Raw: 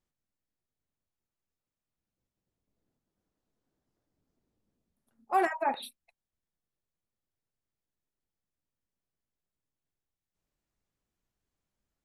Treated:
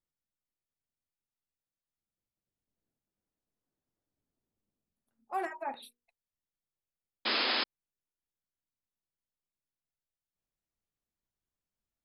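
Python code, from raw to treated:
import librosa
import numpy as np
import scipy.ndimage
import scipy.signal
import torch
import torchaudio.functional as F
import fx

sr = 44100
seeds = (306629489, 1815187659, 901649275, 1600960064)

y = fx.hum_notches(x, sr, base_hz=60, count=8)
y = fx.spec_paint(y, sr, seeds[0], shape='noise', start_s=7.25, length_s=0.39, low_hz=210.0, high_hz=5200.0, level_db=-22.0)
y = F.gain(torch.from_numpy(y), -8.0).numpy()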